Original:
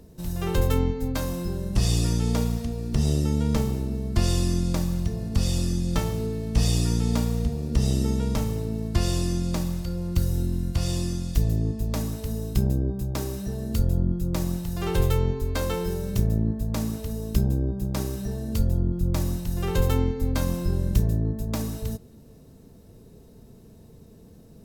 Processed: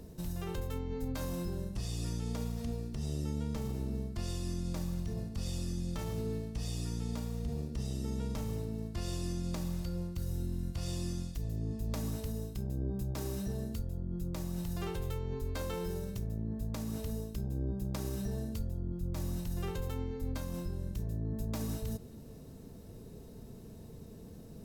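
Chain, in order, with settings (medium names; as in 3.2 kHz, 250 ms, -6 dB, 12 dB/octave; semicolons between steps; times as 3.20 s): reverse; compression 6:1, threshold -31 dBFS, peak gain reduction 16 dB; reverse; peak limiter -28 dBFS, peak gain reduction 6 dB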